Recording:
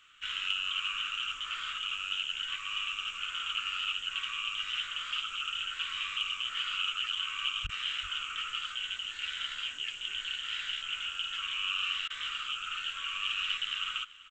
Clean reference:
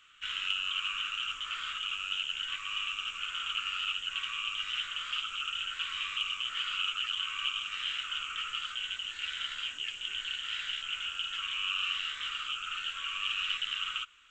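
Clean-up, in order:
0:07.63–0:07.75: high-pass filter 140 Hz 24 dB per octave
repair the gap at 0:07.67/0:12.08, 20 ms
echo removal 385 ms −19 dB

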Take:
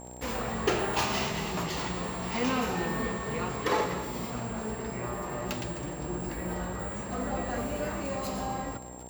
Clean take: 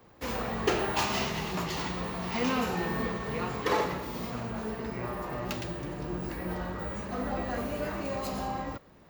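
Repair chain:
click removal
hum removal 61.7 Hz, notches 15
notch filter 7,500 Hz, Q 30
echo removal 258 ms −15 dB

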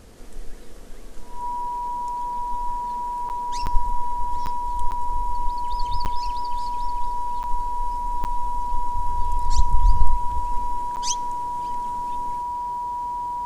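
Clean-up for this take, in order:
notch filter 970 Hz, Q 30
repair the gap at 0:03.29/0:03.66/0:04.46/0:04.91/0:06.05/0:07.43/0:08.24/0:10.96, 9.1 ms

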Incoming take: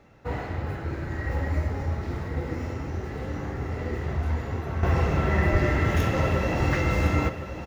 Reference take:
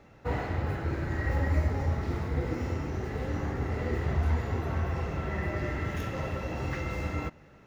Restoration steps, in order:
0:05.51–0:05.63: high-pass filter 140 Hz 24 dB per octave
echo removal 1,061 ms −10.5 dB
level 0 dB, from 0:04.83 −9 dB

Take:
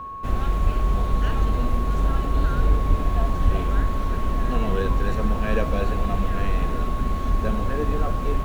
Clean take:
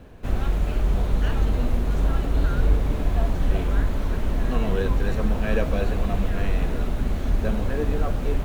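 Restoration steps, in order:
notch filter 1,100 Hz, Q 30
high-pass at the plosives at 0:00.63/0:02.89/0:03.44

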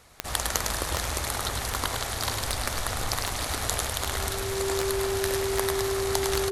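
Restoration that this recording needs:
click removal
notch filter 390 Hz, Q 30
echo removal 105 ms −5.5 dB

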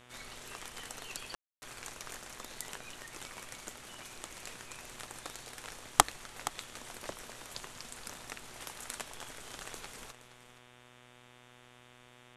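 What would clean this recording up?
hum removal 123 Hz, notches 30
ambience match 0:01.35–0:01.62
echo removal 471 ms −14.5 dB

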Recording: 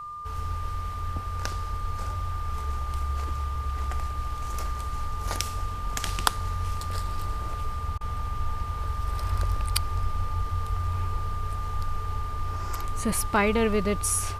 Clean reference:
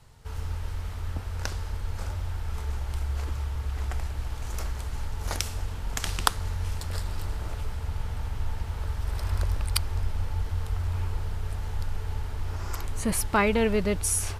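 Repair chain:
notch filter 1,200 Hz, Q 30
repair the gap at 0:07.98, 27 ms

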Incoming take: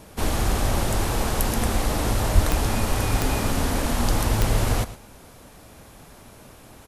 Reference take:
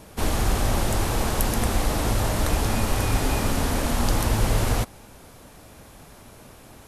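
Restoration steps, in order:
click removal
0:02.34–0:02.46: high-pass filter 140 Hz 24 dB per octave
echo removal 112 ms −15 dB

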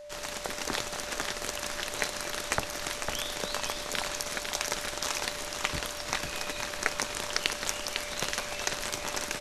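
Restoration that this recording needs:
clipped peaks rebuilt −5.5 dBFS
notch filter 590 Hz, Q 30
echo removal 502 ms −6 dB

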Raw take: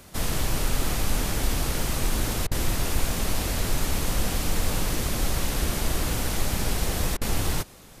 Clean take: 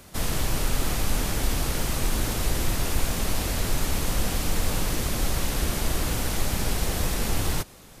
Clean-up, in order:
repair the gap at 0:02.47/0:07.17, 43 ms

